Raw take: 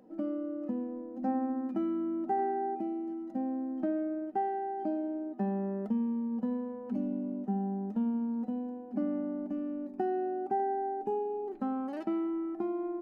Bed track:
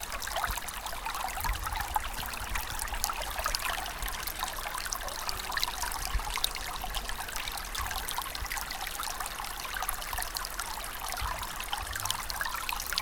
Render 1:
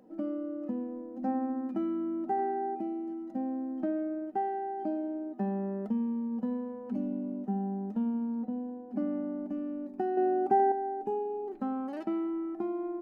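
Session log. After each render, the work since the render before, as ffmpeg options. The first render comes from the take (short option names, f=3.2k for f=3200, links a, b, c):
-filter_complex "[0:a]asettb=1/sr,asplit=3[a][b][c];[a]atrim=end=8.424[d];[b]atrim=start=8.42:end=8.9,asetpts=PTS-STARTPTS,afade=t=in:d=0.004:c=qsin,afade=t=out:st=0.476:d=0.004:c=qsin,lowpass=f=1.5k:p=1[e];[c]atrim=start=8.896[f];[d][e]acrossfade=d=0.004:c1=hsin:c2=qsin[g];[g][f]acrossfade=d=0.004:c1=qsin:c2=hsin,asettb=1/sr,asplit=3[h][i][j];[h]atrim=end=10.174[k];[i]atrim=start=10.17:end=10.72,asetpts=PTS-STARTPTS,afade=t=in:d=0.004:c=qsin,afade=t=out:st=0.546:d=0.004:c=qsin,acontrast=63[l];[j]atrim=start=10.716[m];[k][l]acrossfade=d=0.004:c1=hsin:c2=qsin[n];[n][m]acrossfade=d=0.004:c1=qsin:c2=hsin"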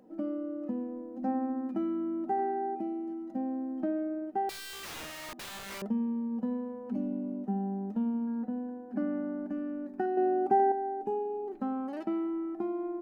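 -filter_complex "[0:a]asettb=1/sr,asplit=3[a][b][c];[a]atrim=end=4.494[d];[b]atrim=start=4.49:end=5.82,asetpts=PTS-STARTPTS,afade=t=in:d=0.004:c=qsin,afade=t=out:st=1.326:d=0.004:c=qsin,aeval=exprs='(mod(75*val(0)+1,2)-1)/75':c=same[e];[c]atrim=start=5.816[f];[d][e]acrossfade=d=0.004:c1=hsin:c2=qsin[g];[g][f]acrossfade=d=0.004:c1=qsin:c2=hsin,asettb=1/sr,asplit=3[h][i][j];[h]atrim=end=8.274[k];[i]atrim=start=8.27:end=10.06,asetpts=PTS-STARTPTS,afade=t=in:d=0.004:c=qsin,afade=t=out:st=1.786:d=0.004:c=qsin,equalizer=f=1.6k:t=o:w=0.44:g=11.5[l];[j]atrim=start=10.056[m];[k][l]acrossfade=d=0.004:c1=hsin:c2=qsin[n];[n][m]acrossfade=d=0.004:c1=qsin:c2=hsin"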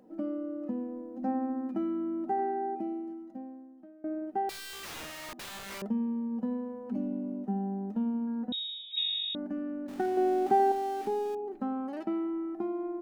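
-filter_complex "[0:a]asettb=1/sr,asplit=3[a][b][c];[a]atrim=end=8.524[d];[b]atrim=start=8.52:end=9.35,asetpts=PTS-STARTPTS,afade=t=in:d=0.004:c=qsin,afade=t=out:st=0.826:d=0.004:c=qsin,lowpass=f=3.4k:t=q:w=0.5098,lowpass=f=3.4k:t=q:w=0.6013,lowpass=f=3.4k:t=q:w=0.9,lowpass=f=3.4k:t=q:w=2.563,afreqshift=-4000[e];[c]atrim=start=9.346[f];[d][e]acrossfade=d=0.004:c1=hsin:c2=qsin[g];[g][f]acrossfade=d=0.004:c1=qsin:c2=hsin,asettb=1/sr,asplit=3[h][i][j];[h]atrim=end=9.884[k];[i]atrim=start=9.88:end=11.35,asetpts=PTS-STARTPTS,afade=t=in:d=0.004:c=qsin,afade=t=out:st=1.466:d=0.004:c=qsin,aeval=exprs='val(0)+0.5*0.00841*sgn(val(0))':c=same[l];[j]atrim=start=11.346[m];[k][l]acrossfade=d=0.004:c1=hsin:c2=qsin[n];[n][m]acrossfade=d=0.004:c1=qsin:c2=hsin,asplit=2[o][p];[o]atrim=end=4.04,asetpts=PTS-STARTPTS,afade=t=out:st=2.93:d=1.11:c=qua:silence=0.0707946[q];[p]atrim=start=4.04,asetpts=PTS-STARTPTS,afade=t=in:d=0.004:c=hsin:silence=0.0707946[r];[q][r]concat=n=2:v=0:a=1"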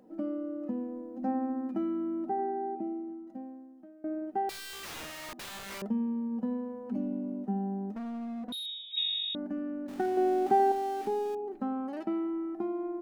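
-filter_complex "[0:a]asettb=1/sr,asplit=3[a][b][c];[a]atrim=end=2.294[d];[b]atrim=start=2.29:end=3.27,asetpts=PTS-STARTPTS,afade=t=in:d=0.004:c=qsin,afade=t=out:st=0.976:d=0.004:c=qsin,lowpass=f=1k:p=1[e];[c]atrim=start=3.266[f];[d][e]acrossfade=d=0.004:c1=hsin:c2=qsin[g];[g][f]acrossfade=d=0.004:c1=qsin:c2=hsin,asettb=1/sr,asplit=3[h][i][j];[h]atrim=end=7.924[k];[i]atrim=start=7.92:end=8.66,asetpts=PTS-STARTPTS,afade=t=in:d=0.004:c=qsin,afade=t=out:st=0.736:d=0.004:c=qsin,asoftclip=type=hard:threshold=-36dB[l];[j]atrim=start=8.656[m];[k][l]acrossfade=d=0.004:c1=hsin:c2=qsin[n];[n][m]acrossfade=d=0.004:c1=qsin:c2=hsin"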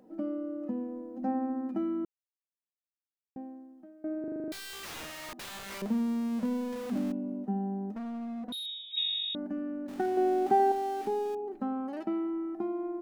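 -filter_complex "[0:a]asettb=1/sr,asplit=3[a][b][c];[a]atrim=end=5.824[d];[b]atrim=start=5.82:end=7.12,asetpts=PTS-STARTPTS,afade=t=in:d=0.004:c=qsin,afade=t=out:st=1.296:d=0.004:c=qsin,aeval=exprs='val(0)+0.5*0.0126*sgn(val(0))':c=same[e];[c]atrim=start=7.116[f];[d][e]acrossfade=d=0.004:c1=hsin:c2=qsin[g];[g][f]acrossfade=d=0.004:c1=qsin:c2=hsin,asplit=11[h][i][j][k][l][m][n][o][p][q][r];[h]atrim=end=2.05,asetpts=PTS-STARTPTS,afade=t=out:st=2.046:d=0.004:c=hsin[s];[i]atrim=start=2.05:end=3.36,asetpts=PTS-STARTPTS,volume=0[t];[j]atrim=start=3.36:end=4.242,asetpts=PTS-STARTPTS,afade=t=in:d=0.004:c=hsin[u];[k]atrim=start=4.198:end=4.242[v];[l]atrim=start=4.198:end=4.242[w];[m]atrim=start=4.198:end=4.242[x];[n]atrim=start=4.198:end=4.242[y];[o]atrim=start=4.198:end=4.242[z];[p]atrim=start=4.198:end=4.242[aa];[q]atrim=start=4.198:end=4.242[ab];[r]atrim=start=4.518[ac];[s][t][u]concat=n=3:v=0:a=1[ad];[ad][v]acrossfade=d=0.004:c1=hsin:c2=hsin[ae];[ae][w]acrossfade=d=0.004:c1=hsin:c2=hsin[af];[af][x]acrossfade=d=0.004:c1=hsin:c2=hsin[ag];[ag][y]acrossfade=d=0.004:c1=hsin:c2=hsin[ah];[ah][z]acrossfade=d=0.004:c1=hsin:c2=hsin[ai];[ai][aa]acrossfade=d=0.004:c1=hsin:c2=hsin[aj];[aj][ab]acrossfade=d=0.004:c1=hsin:c2=hsin[ak];[ak][ac]acrossfade=d=0.004:c1=hsin:c2=hsin"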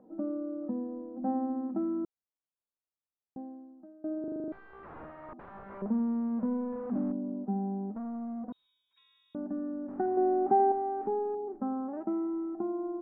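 -af "lowpass=f=1.3k:w=0.5412,lowpass=f=1.3k:w=1.3066"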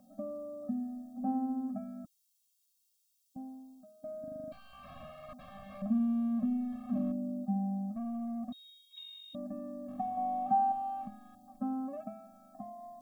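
-af "aexciter=amount=13.6:drive=3.4:freq=2.8k,afftfilt=real='re*eq(mod(floor(b*sr/1024/260),2),0)':imag='im*eq(mod(floor(b*sr/1024/260),2),0)':win_size=1024:overlap=0.75"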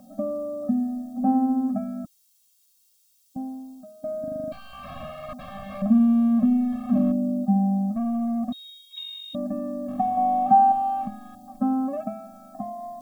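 -af "volume=12dB"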